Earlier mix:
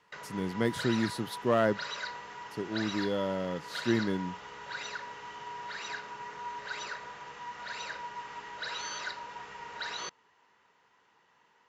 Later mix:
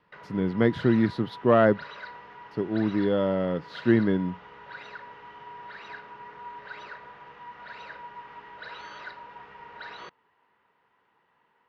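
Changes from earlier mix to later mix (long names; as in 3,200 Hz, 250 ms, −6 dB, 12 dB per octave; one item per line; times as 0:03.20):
speech +8.0 dB
master: add high-frequency loss of the air 330 metres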